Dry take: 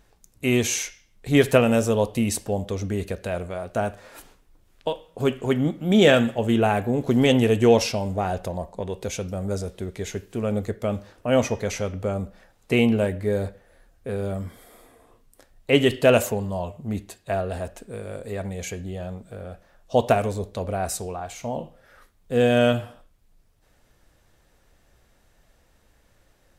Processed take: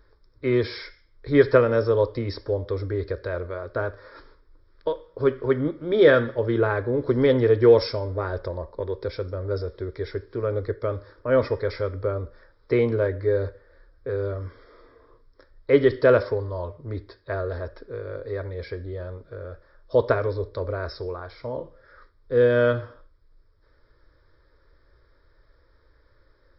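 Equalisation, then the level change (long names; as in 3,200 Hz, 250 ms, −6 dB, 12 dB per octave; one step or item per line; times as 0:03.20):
linear-phase brick-wall low-pass 5,500 Hz
phaser with its sweep stopped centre 750 Hz, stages 6
+3.0 dB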